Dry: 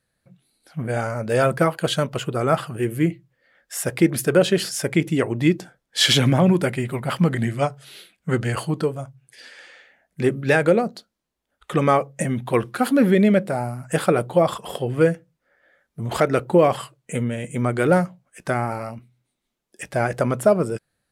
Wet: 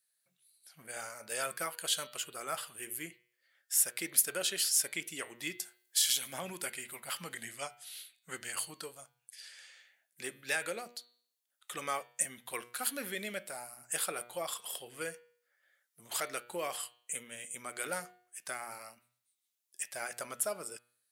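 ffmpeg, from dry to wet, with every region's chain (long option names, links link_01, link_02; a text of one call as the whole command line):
ffmpeg -i in.wav -filter_complex "[0:a]asettb=1/sr,asplit=3[link_01][link_02][link_03];[link_01]atrim=end=5.594[link_04];[link_02]atrim=start=5.59:end=6.33,asetpts=PTS-STARTPTS,afade=type=in:duration=0.004:curve=qsin,afade=type=out:start_time=0.736:duration=0.004:curve=qsin,highshelf=frequency=7100:gain=12,acompressor=threshold=-22dB:ratio=5:attack=3.2:release=140:knee=1:detection=peak[link_05];[link_03]atrim=start=6.326[link_06];[link_04][link_05]acrossfade=duration=0.004:curve1=hsin:curve2=qsin[link_07];[link_07][link_06]acrossfade=duration=0.004:curve1=qsin:curve2=hsin,aderivative,bandreject=frequency=120.5:width_type=h:width=4,bandreject=frequency=241:width_type=h:width=4,bandreject=frequency=361.5:width_type=h:width=4,bandreject=frequency=482:width_type=h:width=4,bandreject=frequency=602.5:width_type=h:width=4,bandreject=frequency=723:width_type=h:width=4,bandreject=frequency=843.5:width_type=h:width=4,bandreject=frequency=964:width_type=h:width=4,bandreject=frequency=1084.5:width_type=h:width=4,bandreject=frequency=1205:width_type=h:width=4,bandreject=frequency=1325.5:width_type=h:width=4,bandreject=frequency=1446:width_type=h:width=4,bandreject=frequency=1566.5:width_type=h:width=4,bandreject=frequency=1687:width_type=h:width=4,bandreject=frequency=1807.5:width_type=h:width=4,bandreject=frequency=1928:width_type=h:width=4,bandreject=frequency=2048.5:width_type=h:width=4,bandreject=frequency=2169:width_type=h:width=4,bandreject=frequency=2289.5:width_type=h:width=4,bandreject=frequency=2410:width_type=h:width=4,bandreject=frequency=2530.5:width_type=h:width=4,bandreject=frequency=2651:width_type=h:width=4,bandreject=frequency=2771.5:width_type=h:width=4,bandreject=frequency=2892:width_type=h:width=4,bandreject=frequency=3012.5:width_type=h:width=4,bandreject=frequency=3133:width_type=h:width=4,bandreject=frequency=3253.5:width_type=h:width=4,bandreject=frequency=3374:width_type=h:width=4,bandreject=frequency=3494.5:width_type=h:width=4,bandreject=frequency=3615:width_type=h:width=4,bandreject=frequency=3735.5:width_type=h:width=4,bandreject=frequency=3856:width_type=h:width=4,bandreject=frequency=3976.5:width_type=h:width=4,bandreject=frequency=4097:width_type=h:width=4,bandreject=frequency=4217.5:width_type=h:width=4,bandreject=frequency=4338:width_type=h:width=4,bandreject=frequency=4458.5:width_type=h:width=4,bandreject=frequency=4579:width_type=h:width=4" out.wav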